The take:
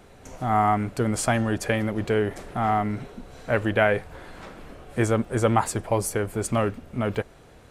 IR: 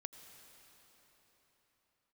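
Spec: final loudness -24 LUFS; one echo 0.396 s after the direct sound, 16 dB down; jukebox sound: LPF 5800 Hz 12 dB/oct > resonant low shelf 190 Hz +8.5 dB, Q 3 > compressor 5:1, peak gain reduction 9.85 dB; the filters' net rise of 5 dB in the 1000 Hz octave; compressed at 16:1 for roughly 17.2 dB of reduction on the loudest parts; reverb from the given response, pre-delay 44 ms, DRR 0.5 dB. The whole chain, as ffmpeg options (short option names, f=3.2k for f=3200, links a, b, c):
-filter_complex "[0:a]equalizer=f=1k:t=o:g=8,acompressor=threshold=-28dB:ratio=16,aecho=1:1:396:0.158,asplit=2[a][b];[1:a]atrim=start_sample=2205,adelay=44[c];[b][c]afir=irnorm=-1:irlink=0,volume=3.5dB[d];[a][d]amix=inputs=2:normalize=0,lowpass=5.8k,lowshelf=f=190:t=q:w=3:g=8.5,acompressor=threshold=-27dB:ratio=5,volume=8dB"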